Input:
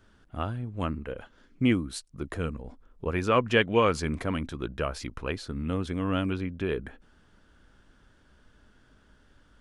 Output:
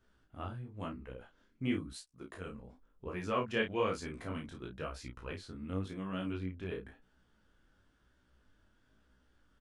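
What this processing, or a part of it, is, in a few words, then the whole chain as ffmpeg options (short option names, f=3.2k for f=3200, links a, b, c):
double-tracked vocal: -filter_complex "[0:a]asplit=2[a][b];[b]adelay=32,volume=-5.5dB[c];[a][c]amix=inputs=2:normalize=0,flanger=delay=15.5:depth=7.4:speed=0.98,asettb=1/sr,asplit=3[d][e][f];[d]atrim=end=1.934[g];[e]atrim=start=1.93:end=2.47,asetpts=PTS-STARTPTS,afade=t=in:d=0.004:c=qsin,afade=t=out:st=0.536:d=0.004:c=qsin,lowshelf=f=150:g=-11.5[h];[f]atrim=start=2.466[i];[g][h]acrossfade=d=0.004:c1=hsin:c2=qsin[j];[j][i]acrossfade=d=0.004:c1=qsin:c2=hsin,volume=-8.5dB"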